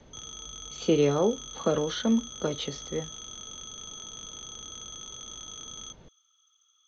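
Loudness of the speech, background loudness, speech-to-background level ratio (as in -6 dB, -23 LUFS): -28.0 LUFS, -40.0 LUFS, 12.0 dB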